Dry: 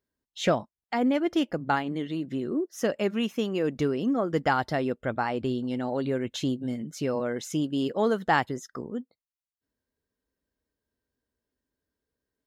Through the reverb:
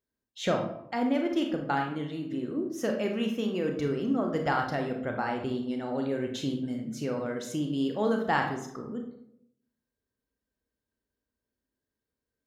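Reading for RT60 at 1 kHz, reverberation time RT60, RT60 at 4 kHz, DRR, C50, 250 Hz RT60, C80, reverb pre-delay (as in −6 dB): 0.70 s, 0.75 s, 0.45 s, 2.5 dB, 6.0 dB, 0.90 s, 9.0 dB, 28 ms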